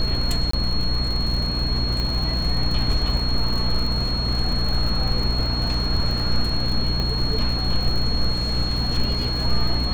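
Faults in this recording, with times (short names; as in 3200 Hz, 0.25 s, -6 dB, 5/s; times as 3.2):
crackle 75/s -27 dBFS
hum 60 Hz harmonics 5 -26 dBFS
tone 4300 Hz -26 dBFS
0.51–0.53 gap 24 ms
2 pop -14 dBFS
7 pop -14 dBFS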